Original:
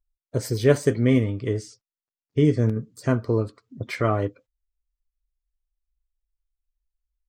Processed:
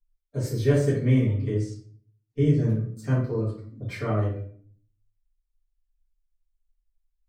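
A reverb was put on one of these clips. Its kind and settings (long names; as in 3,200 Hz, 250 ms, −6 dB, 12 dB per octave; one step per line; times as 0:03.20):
rectangular room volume 52 cubic metres, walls mixed, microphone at 2.1 metres
level −15 dB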